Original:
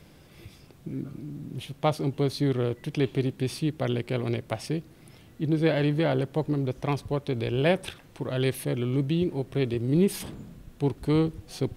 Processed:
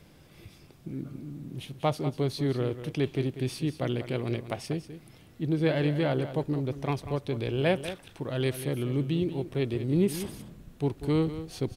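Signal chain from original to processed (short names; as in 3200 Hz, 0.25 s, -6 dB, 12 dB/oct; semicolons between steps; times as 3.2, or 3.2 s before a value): echo 0.192 s -12 dB; gain -2.5 dB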